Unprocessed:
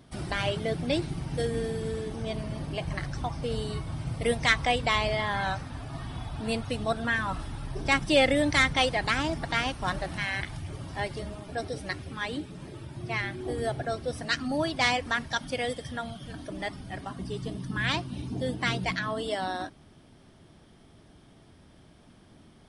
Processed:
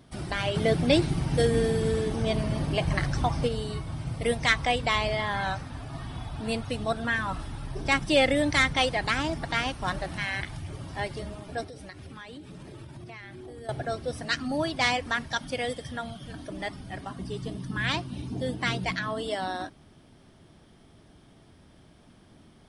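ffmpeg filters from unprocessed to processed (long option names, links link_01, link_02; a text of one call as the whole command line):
ffmpeg -i in.wav -filter_complex "[0:a]asplit=3[link_01][link_02][link_03];[link_01]afade=type=out:start_time=0.54:duration=0.02[link_04];[link_02]acontrast=59,afade=type=in:start_time=0.54:duration=0.02,afade=type=out:start_time=3.47:duration=0.02[link_05];[link_03]afade=type=in:start_time=3.47:duration=0.02[link_06];[link_04][link_05][link_06]amix=inputs=3:normalize=0,asettb=1/sr,asplit=3[link_07][link_08][link_09];[link_07]atrim=end=11.634[link_10];[link_08]atrim=start=11.63:end=13.69,asetpts=PTS-STARTPTS,afade=type=in:duration=0.004:curve=qsin,afade=type=out:start_time=2.056:duration=0.004:curve=qsin,acompressor=threshold=-39dB:ratio=10:attack=3.2:release=140:knee=1:detection=peak[link_11];[link_09]atrim=start=13.686[link_12];[link_10][link_11]acrossfade=duration=0.004:curve1=hsin:curve2=qsin[link_13];[link_13][link_12]acrossfade=duration=0.004:curve1=qsin:curve2=hsin" out.wav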